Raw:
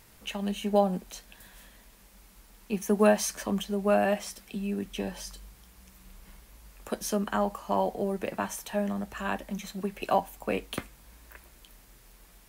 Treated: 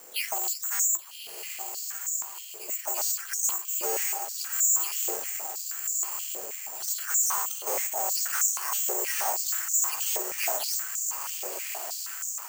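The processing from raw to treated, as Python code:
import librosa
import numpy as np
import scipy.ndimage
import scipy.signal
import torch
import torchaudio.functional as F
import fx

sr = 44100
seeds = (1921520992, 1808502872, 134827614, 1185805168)

y = fx.spec_delay(x, sr, highs='early', ms=295)
y = fx.high_shelf(y, sr, hz=4300.0, db=-8.5)
y = fx.rider(y, sr, range_db=4, speed_s=0.5)
y = np.clip(y, -10.0 ** (-36.0 / 20.0), 10.0 ** (-36.0 / 20.0))
y = y * np.sin(2.0 * np.pi * 170.0 * np.arange(len(y)) / sr)
y = fx.echo_diffused(y, sr, ms=1256, feedback_pct=52, wet_db=-5)
y = (np.kron(scipy.signal.resample_poly(y, 1, 6), np.eye(6)[0]) * 6)[:len(y)]
y = fx.filter_held_highpass(y, sr, hz=6.3, low_hz=500.0, high_hz=6500.0)
y = y * 10.0 ** (3.0 / 20.0)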